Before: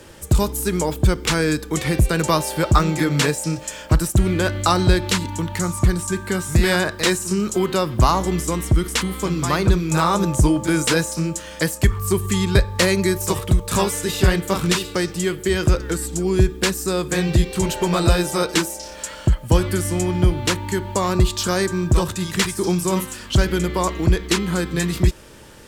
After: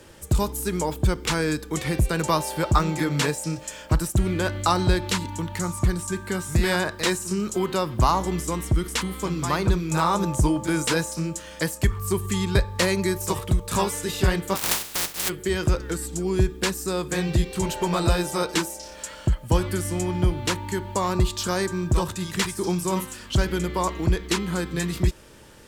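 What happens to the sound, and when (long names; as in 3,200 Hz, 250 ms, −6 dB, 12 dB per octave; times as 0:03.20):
0:14.55–0:15.28: compressing power law on the bin magnitudes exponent 0.12
whole clip: dynamic equaliser 920 Hz, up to +4 dB, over −34 dBFS, Q 2.8; level −5 dB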